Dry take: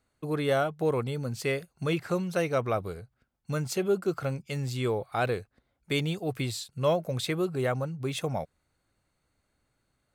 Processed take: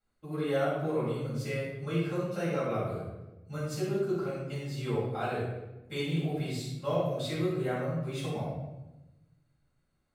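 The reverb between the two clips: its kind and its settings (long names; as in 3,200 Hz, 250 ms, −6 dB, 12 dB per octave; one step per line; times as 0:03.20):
rectangular room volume 430 cubic metres, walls mixed, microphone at 7.4 metres
level −19.5 dB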